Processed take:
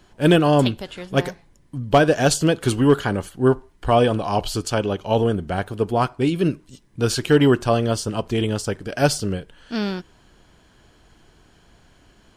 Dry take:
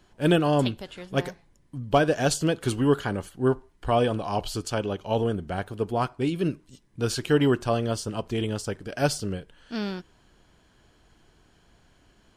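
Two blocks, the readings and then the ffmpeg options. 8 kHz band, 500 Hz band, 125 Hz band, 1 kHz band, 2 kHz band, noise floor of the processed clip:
+6.0 dB, +6.0 dB, +6.0 dB, +6.0 dB, +6.0 dB, -55 dBFS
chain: -af "asoftclip=type=hard:threshold=-12dB,volume=6dB"

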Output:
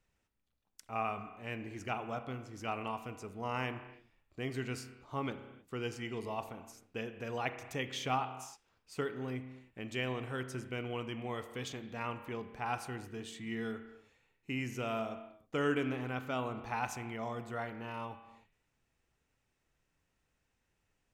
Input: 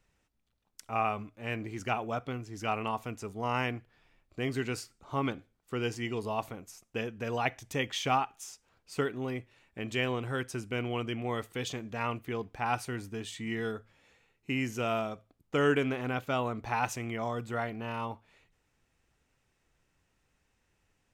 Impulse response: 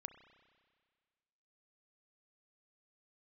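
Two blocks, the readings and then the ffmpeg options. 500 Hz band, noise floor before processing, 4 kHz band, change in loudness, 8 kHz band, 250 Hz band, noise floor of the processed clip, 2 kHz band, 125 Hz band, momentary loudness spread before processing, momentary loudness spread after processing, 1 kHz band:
-5.5 dB, -76 dBFS, -5.5 dB, -5.5 dB, -6.0 dB, -5.0 dB, -81 dBFS, -5.5 dB, -5.0 dB, 10 LU, 10 LU, -5.5 dB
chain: -filter_complex "[1:a]atrim=start_sample=2205,afade=t=out:st=0.37:d=0.01,atrim=end_sample=16758[a];[0:a][a]afir=irnorm=-1:irlink=0"

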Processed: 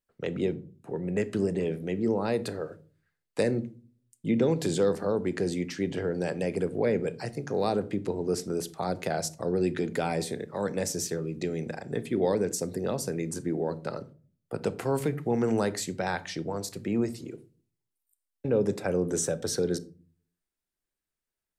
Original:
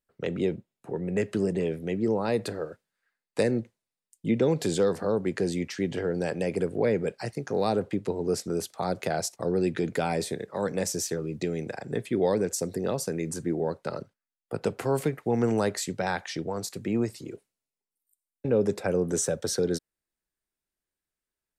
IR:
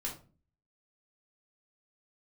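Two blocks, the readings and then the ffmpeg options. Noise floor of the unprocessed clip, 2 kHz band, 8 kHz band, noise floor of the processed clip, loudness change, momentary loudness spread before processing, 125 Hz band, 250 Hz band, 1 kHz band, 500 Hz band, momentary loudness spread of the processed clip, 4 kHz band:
under -85 dBFS, -1.5 dB, -1.5 dB, under -85 dBFS, -1.0 dB, 9 LU, -1.0 dB, -0.5 dB, -1.5 dB, -1.0 dB, 9 LU, -1.5 dB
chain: -filter_complex "[0:a]asplit=2[a][b];[1:a]atrim=start_sample=2205,lowshelf=f=470:g=10.5,adelay=30[c];[b][c]afir=irnorm=-1:irlink=0,volume=-19dB[d];[a][d]amix=inputs=2:normalize=0,volume=-1.5dB"

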